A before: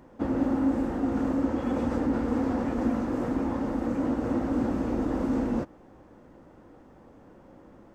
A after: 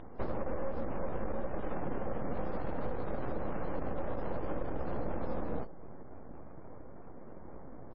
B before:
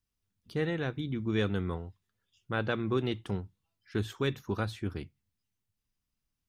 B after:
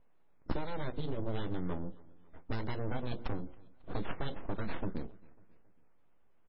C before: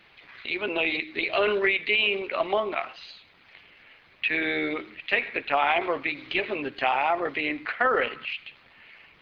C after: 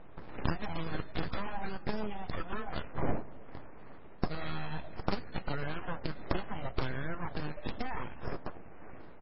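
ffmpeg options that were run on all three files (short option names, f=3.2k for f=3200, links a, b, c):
-af "lowshelf=f=64:g=7.5,bandreject=f=60:t=h:w=6,bandreject=f=120:t=h:w=6,bandreject=f=180:t=h:w=6,bandreject=f=240:t=h:w=6,bandreject=f=300:t=h:w=6,bandreject=f=360:t=h:w=6,bandreject=f=420:t=h:w=6,acompressor=threshold=-35dB:ratio=8,asoftclip=type=tanh:threshold=-28dB,aexciter=amount=10.6:drive=5.9:freq=4k,aeval=exprs='abs(val(0))':c=same,adynamicsmooth=sensitivity=5.5:basefreq=1k,aecho=1:1:273|546|819:0.0668|0.0327|0.016,volume=7.5dB" -ar 16000 -c:a libmp3lame -b:a 16k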